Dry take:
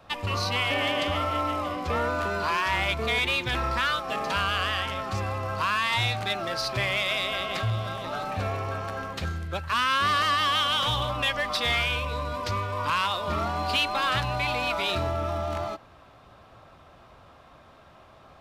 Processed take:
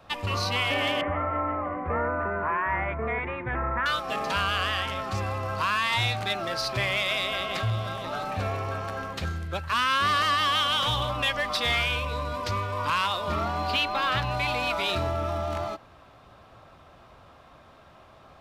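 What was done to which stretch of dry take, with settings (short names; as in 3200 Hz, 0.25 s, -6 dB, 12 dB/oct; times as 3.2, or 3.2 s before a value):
1.01–3.86 elliptic low-pass 2000 Hz, stop band 80 dB
13.33–14.31 dynamic EQ 9200 Hz, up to -8 dB, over -47 dBFS, Q 0.81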